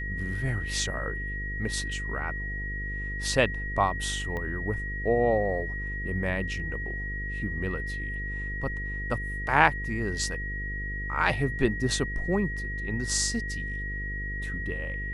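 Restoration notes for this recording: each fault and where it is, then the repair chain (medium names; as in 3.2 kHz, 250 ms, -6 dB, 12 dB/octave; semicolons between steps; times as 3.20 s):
buzz 50 Hz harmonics 10 -35 dBFS
whine 1.9 kHz -34 dBFS
4.37 s: pop -22 dBFS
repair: de-click; de-hum 50 Hz, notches 10; band-stop 1.9 kHz, Q 30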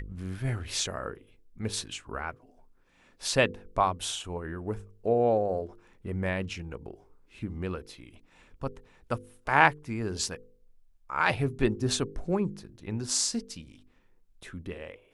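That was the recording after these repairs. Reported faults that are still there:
4.37 s: pop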